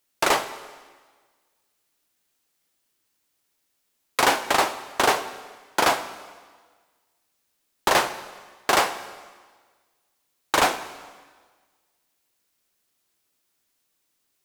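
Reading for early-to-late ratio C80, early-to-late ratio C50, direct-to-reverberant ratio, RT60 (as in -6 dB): 14.0 dB, 12.5 dB, 11.0 dB, 1.5 s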